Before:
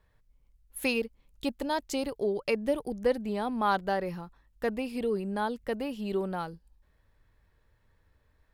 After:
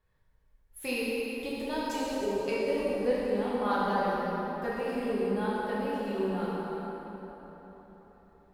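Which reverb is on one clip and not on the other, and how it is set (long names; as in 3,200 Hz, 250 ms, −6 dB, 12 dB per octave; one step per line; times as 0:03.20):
dense smooth reverb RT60 4.3 s, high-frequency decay 0.6×, DRR −8.5 dB
level −9 dB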